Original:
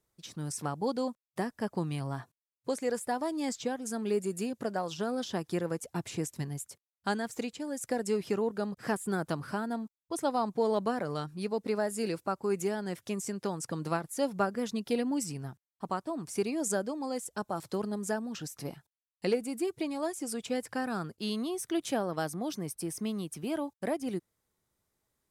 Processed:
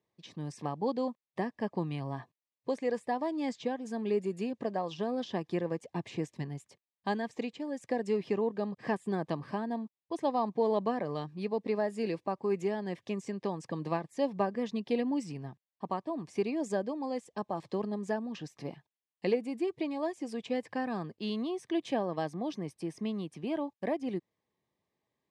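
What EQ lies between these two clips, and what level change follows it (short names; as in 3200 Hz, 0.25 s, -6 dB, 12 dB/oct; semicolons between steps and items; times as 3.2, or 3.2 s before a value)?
BPF 130–3400 Hz; Butterworth band-stop 1400 Hz, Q 3.9; 0.0 dB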